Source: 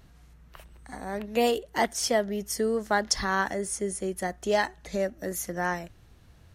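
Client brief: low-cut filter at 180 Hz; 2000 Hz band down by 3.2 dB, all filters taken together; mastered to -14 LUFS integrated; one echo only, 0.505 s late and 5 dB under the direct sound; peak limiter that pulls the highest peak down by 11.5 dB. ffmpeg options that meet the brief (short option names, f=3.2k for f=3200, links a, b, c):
-af "highpass=180,equalizer=f=2k:t=o:g=-4,alimiter=limit=-22dB:level=0:latency=1,aecho=1:1:505:0.562,volume=18dB"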